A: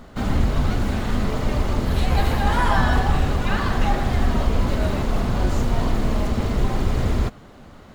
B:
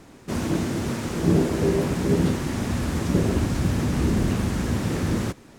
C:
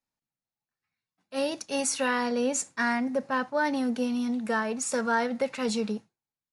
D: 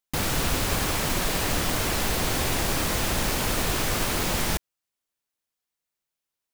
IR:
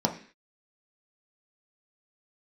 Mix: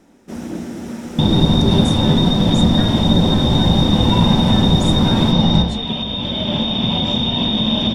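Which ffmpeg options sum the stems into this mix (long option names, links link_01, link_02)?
-filter_complex "[0:a]acompressor=threshold=-25dB:ratio=10,adelay=1550,volume=0dB,asplit=2[link_01][link_02];[link_02]volume=-10.5dB[link_03];[1:a]volume=-7dB,asplit=2[link_04][link_05];[link_05]volume=-17.5dB[link_06];[2:a]acompressor=threshold=-35dB:ratio=6,volume=0.5dB[link_07];[3:a]aemphasis=mode=reproduction:type=riaa,adelay=1050,volume=-7dB,asplit=2[link_08][link_09];[link_09]volume=-5dB[link_10];[link_01][link_08]amix=inputs=2:normalize=0,lowpass=frequency=3100:width_type=q:width=0.5098,lowpass=frequency=3100:width_type=q:width=0.6013,lowpass=frequency=3100:width_type=q:width=0.9,lowpass=frequency=3100:width_type=q:width=2.563,afreqshift=-3700,acompressor=threshold=-25dB:ratio=5,volume=0dB[link_11];[4:a]atrim=start_sample=2205[link_12];[link_03][link_06][link_10]amix=inputs=3:normalize=0[link_13];[link_13][link_12]afir=irnorm=-1:irlink=0[link_14];[link_04][link_07][link_11][link_14]amix=inputs=4:normalize=0,dynaudnorm=framelen=180:gausssize=11:maxgain=8.5dB"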